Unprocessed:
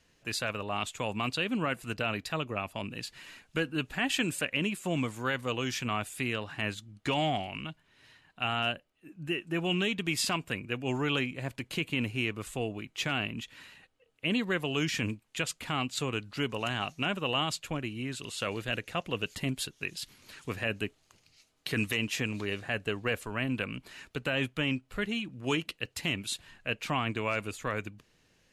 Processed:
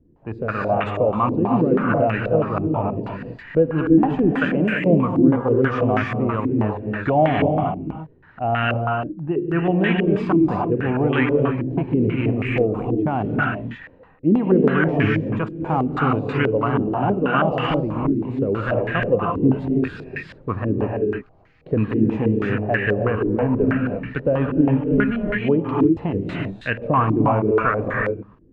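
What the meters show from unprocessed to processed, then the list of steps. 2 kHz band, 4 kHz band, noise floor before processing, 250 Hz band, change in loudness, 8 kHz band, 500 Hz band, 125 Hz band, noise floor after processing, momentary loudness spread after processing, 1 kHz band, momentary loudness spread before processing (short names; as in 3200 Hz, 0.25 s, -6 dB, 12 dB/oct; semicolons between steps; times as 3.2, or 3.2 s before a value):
+7.0 dB, -5.5 dB, -69 dBFS, +16.0 dB, +12.0 dB, under -20 dB, +16.0 dB, +14.5 dB, -50 dBFS, 8 LU, +13.5 dB, 8 LU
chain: low shelf 330 Hz +9 dB; non-linear reverb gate 0.36 s rising, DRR -0.5 dB; stepped low-pass 6.2 Hz 330–1800 Hz; gain +4 dB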